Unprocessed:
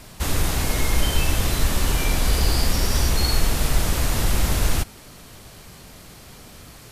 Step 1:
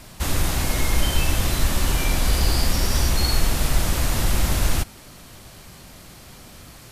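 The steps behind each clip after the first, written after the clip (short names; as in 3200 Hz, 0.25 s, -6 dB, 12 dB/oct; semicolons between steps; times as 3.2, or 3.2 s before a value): notch 440 Hz, Q 12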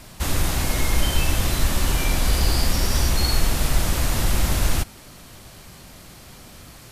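nothing audible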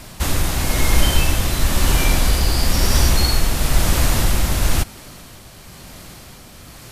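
tremolo 1 Hz, depth 33%; gain +5.5 dB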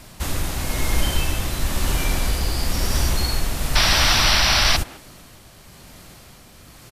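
speakerphone echo 0.14 s, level -9 dB; painted sound noise, 3.75–4.77, 580–6000 Hz -13 dBFS; gain -5.5 dB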